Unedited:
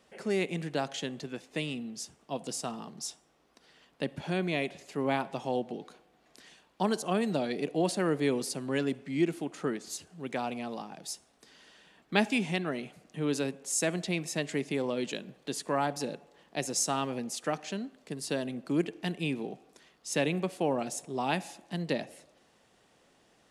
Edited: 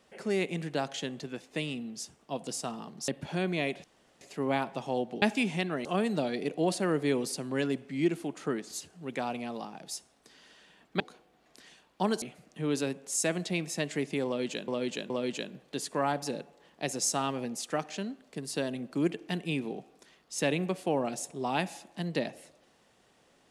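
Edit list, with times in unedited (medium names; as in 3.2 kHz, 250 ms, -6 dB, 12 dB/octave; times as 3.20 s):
3.08–4.03 s: delete
4.79 s: insert room tone 0.37 s
5.80–7.02 s: swap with 12.17–12.80 s
14.84–15.26 s: loop, 3 plays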